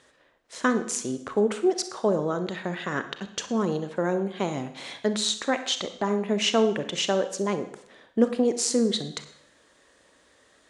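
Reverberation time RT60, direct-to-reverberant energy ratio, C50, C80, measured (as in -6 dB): 0.70 s, 9.0 dB, 11.0 dB, 14.0 dB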